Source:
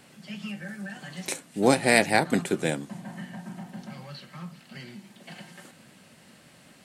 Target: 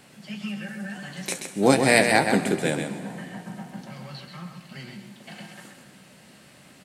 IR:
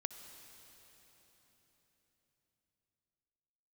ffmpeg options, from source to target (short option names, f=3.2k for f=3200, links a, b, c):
-filter_complex "[0:a]asplit=2[a][b];[b]adelay=15,volume=-12dB[c];[a][c]amix=inputs=2:normalize=0,asplit=2[d][e];[1:a]atrim=start_sample=2205,asetrate=83790,aresample=44100,adelay=131[f];[e][f]afir=irnorm=-1:irlink=0,volume=1.5dB[g];[d][g]amix=inputs=2:normalize=0,volume=1.5dB"